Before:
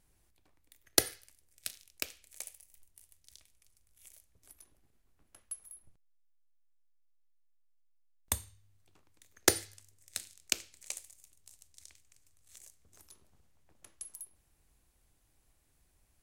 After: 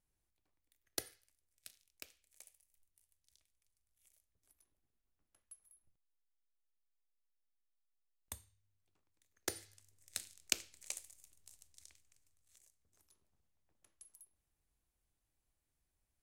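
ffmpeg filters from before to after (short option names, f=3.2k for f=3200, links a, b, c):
-af "volume=-3dB,afade=t=in:st=9.49:d=0.7:silence=0.251189,afade=t=out:st=11.5:d=1.15:silence=0.281838"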